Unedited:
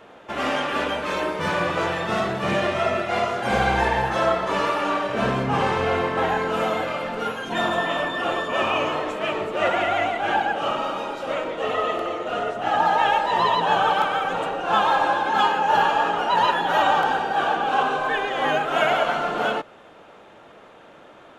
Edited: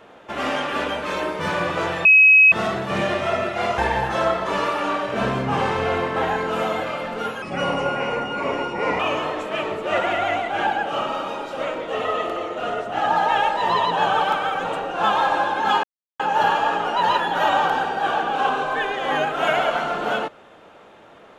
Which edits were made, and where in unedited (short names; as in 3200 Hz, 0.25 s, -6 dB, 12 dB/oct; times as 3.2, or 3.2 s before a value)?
2.05 add tone 2550 Hz -8 dBFS 0.47 s
3.31–3.79 cut
7.43–8.69 speed 80%
15.53 insert silence 0.36 s